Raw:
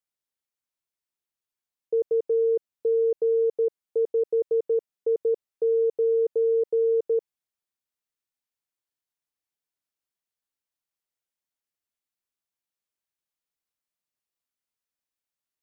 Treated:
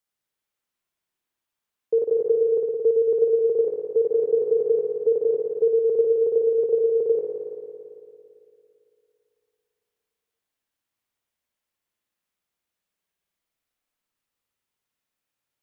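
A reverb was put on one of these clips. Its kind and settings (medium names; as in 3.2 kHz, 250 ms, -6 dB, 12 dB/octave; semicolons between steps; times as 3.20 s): spring tank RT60 2.7 s, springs 56 ms, chirp 75 ms, DRR -2.5 dB; trim +4 dB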